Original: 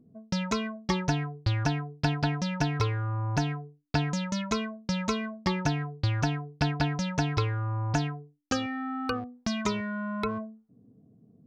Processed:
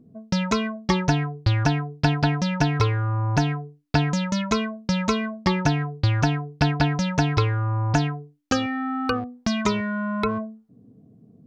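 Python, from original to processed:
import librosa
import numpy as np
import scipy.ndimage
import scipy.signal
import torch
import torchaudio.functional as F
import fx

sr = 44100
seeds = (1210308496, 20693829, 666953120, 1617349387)

y = fx.high_shelf(x, sr, hz=7300.0, db=-5.5)
y = y * librosa.db_to_amplitude(6.5)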